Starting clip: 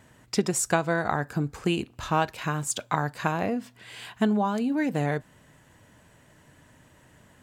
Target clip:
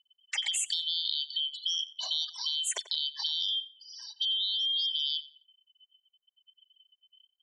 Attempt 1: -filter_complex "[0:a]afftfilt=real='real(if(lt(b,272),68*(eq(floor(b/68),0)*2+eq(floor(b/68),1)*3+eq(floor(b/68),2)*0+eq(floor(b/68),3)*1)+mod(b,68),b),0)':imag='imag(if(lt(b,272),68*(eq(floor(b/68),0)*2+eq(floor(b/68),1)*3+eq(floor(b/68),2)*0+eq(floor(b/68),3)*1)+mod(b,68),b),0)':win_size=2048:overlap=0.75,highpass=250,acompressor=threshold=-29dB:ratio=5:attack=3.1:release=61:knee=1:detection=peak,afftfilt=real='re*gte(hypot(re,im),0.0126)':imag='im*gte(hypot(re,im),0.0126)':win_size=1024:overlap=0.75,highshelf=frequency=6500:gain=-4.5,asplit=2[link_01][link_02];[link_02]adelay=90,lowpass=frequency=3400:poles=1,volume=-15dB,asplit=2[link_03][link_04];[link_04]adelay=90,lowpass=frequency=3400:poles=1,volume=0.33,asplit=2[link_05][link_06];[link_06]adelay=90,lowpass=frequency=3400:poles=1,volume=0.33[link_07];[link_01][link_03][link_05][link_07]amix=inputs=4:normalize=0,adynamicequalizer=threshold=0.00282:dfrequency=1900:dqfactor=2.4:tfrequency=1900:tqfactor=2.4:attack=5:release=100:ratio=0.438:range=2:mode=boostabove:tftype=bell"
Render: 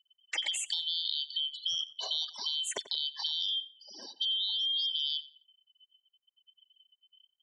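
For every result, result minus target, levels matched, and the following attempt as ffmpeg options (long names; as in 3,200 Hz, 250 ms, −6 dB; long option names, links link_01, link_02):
250 Hz band +17.0 dB; 8,000 Hz band −3.0 dB
-filter_complex "[0:a]afftfilt=real='real(if(lt(b,272),68*(eq(floor(b/68),0)*2+eq(floor(b/68),1)*3+eq(floor(b/68),2)*0+eq(floor(b/68),3)*1)+mod(b,68),b),0)':imag='imag(if(lt(b,272),68*(eq(floor(b/68),0)*2+eq(floor(b/68),1)*3+eq(floor(b/68),2)*0+eq(floor(b/68),3)*1)+mod(b,68),b),0)':win_size=2048:overlap=0.75,highpass=740,acompressor=threshold=-29dB:ratio=5:attack=3.1:release=61:knee=1:detection=peak,afftfilt=real='re*gte(hypot(re,im),0.0126)':imag='im*gte(hypot(re,im),0.0126)':win_size=1024:overlap=0.75,highshelf=frequency=6500:gain=-4.5,asplit=2[link_01][link_02];[link_02]adelay=90,lowpass=frequency=3400:poles=1,volume=-15dB,asplit=2[link_03][link_04];[link_04]adelay=90,lowpass=frequency=3400:poles=1,volume=0.33,asplit=2[link_05][link_06];[link_06]adelay=90,lowpass=frequency=3400:poles=1,volume=0.33[link_07];[link_01][link_03][link_05][link_07]amix=inputs=4:normalize=0,adynamicequalizer=threshold=0.00282:dfrequency=1900:dqfactor=2.4:tfrequency=1900:tqfactor=2.4:attack=5:release=100:ratio=0.438:range=2:mode=boostabove:tftype=bell"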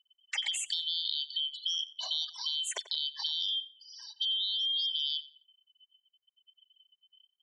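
8,000 Hz band −3.0 dB
-filter_complex "[0:a]afftfilt=real='real(if(lt(b,272),68*(eq(floor(b/68),0)*2+eq(floor(b/68),1)*3+eq(floor(b/68),2)*0+eq(floor(b/68),3)*1)+mod(b,68),b),0)':imag='imag(if(lt(b,272),68*(eq(floor(b/68),0)*2+eq(floor(b/68),1)*3+eq(floor(b/68),2)*0+eq(floor(b/68),3)*1)+mod(b,68),b),0)':win_size=2048:overlap=0.75,highpass=740,acompressor=threshold=-29dB:ratio=5:attack=3.1:release=61:knee=1:detection=peak,afftfilt=real='re*gte(hypot(re,im),0.0126)':imag='im*gte(hypot(re,im),0.0126)':win_size=1024:overlap=0.75,highshelf=frequency=6500:gain=3.5,asplit=2[link_01][link_02];[link_02]adelay=90,lowpass=frequency=3400:poles=1,volume=-15dB,asplit=2[link_03][link_04];[link_04]adelay=90,lowpass=frequency=3400:poles=1,volume=0.33,asplit=2[link_05][link_06];[link_06]adelay=90,lowpass=frequency=3400:poles=1,volume=0.33[link_07];[link_01][link_03][link_05][link_07]amix=inputs=4:normalize=0,adynamicequalizer=threshold=0.00282:dfrequency=1900:dqfactor=2.4:tfrequency=1900:tqfactor=2.4:attack=5:release=100:ratio=0.438:range=2:mode=boostabove:tftype=bell"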